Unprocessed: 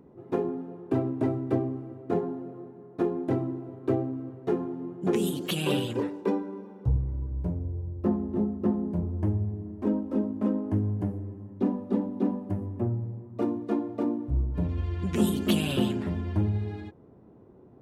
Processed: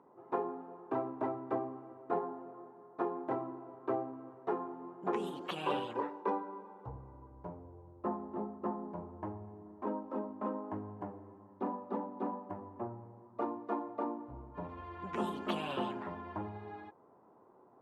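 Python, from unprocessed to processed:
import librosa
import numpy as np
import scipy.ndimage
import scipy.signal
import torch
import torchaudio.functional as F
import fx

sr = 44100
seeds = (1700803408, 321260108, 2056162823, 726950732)

y = fx.bandpass_q(x, sr, hz=1000.0, q=2.3)
y = F.gain(torch.from_numpy(y), 5.0).numpy()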